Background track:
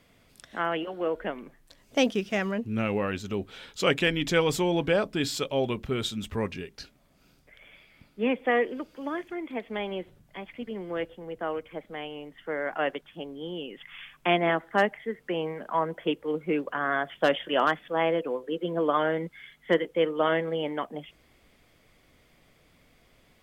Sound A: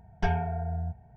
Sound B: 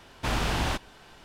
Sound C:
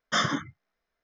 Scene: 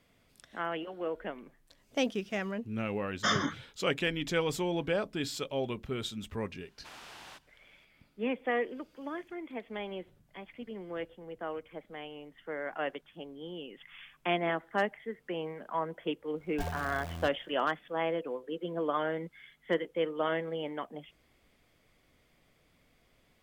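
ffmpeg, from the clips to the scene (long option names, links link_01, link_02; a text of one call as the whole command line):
ffmpeg -i bed.wav -i cue0.wav -i cue1.wav -i cue2.wav -filter_complex "[0:a]volume=-6.5dB[link_01];[2:a]highpass=frequency=950:poles=1[link_02];[1:a]acrusher=bits=6:dc=4:mix=0:aa=0.000001[link_03];[3:a]atrim=end=1.03,asetpts=PTS-STARTPTS,volume=-3.5dB,afade=type=in:duration=0.004:curve=hsin,afade=type=out:start_time=1.026:duration=0.004:curve=hsin,adelay=3110[link_04];[link_02]atrim=end=1.24,asetpts=PTS-STARTPTS,volume=-17dB,afade=type=in:duration=0.004:curve=hsin,afade=type=out:start_time=1.236:duration=0.004:curve=hsin,adelay=6610[link_05];[link_03]atrim=end=1.16,asetpts=PTS-STARTPTS,volume=-10.5dB,afade=type=in:duration=0.004:curve=hsin,afade=type=out:start_time=1.156:duration=0.004:curve=hsin,adelay=721476S[link_06];[link_01][link_04][link_05][link_06]amix=inputs=4:normalize=0" out.wav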